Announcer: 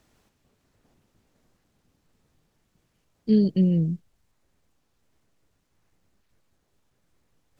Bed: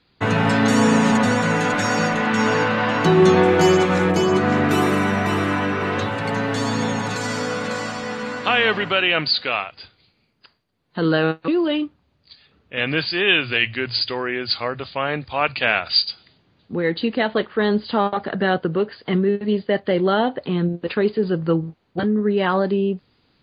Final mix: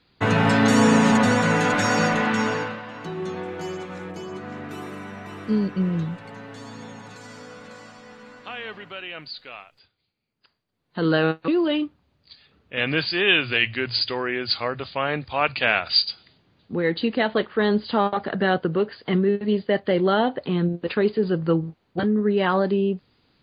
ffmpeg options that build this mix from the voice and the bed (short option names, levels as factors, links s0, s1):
-filter_complex "[0:a]adelay=2200,volume=0.708[s0];[1:a]volume=5.62,afade=t=out:st=2.16:d=0.66:silence=0.149624,afade=t=in:st=10.23:d=0.92:silence=0.16788[s1];[s0][s1]amix=inputs=2:normalize=0"